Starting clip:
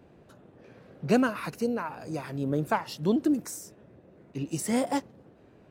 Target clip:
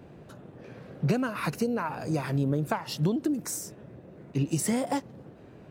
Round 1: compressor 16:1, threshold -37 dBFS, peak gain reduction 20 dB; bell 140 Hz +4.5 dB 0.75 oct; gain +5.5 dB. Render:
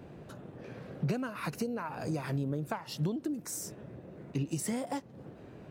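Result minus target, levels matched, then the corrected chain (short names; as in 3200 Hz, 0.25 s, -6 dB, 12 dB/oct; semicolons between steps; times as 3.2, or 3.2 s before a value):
compressor: peak gain reduction +7 dB
compressor 16:1, threshold -29.5 dBFS, peak gain reduction 13 dB; bell 140 Hz +4.5 dB 0.75 oct; gain +5.5 dB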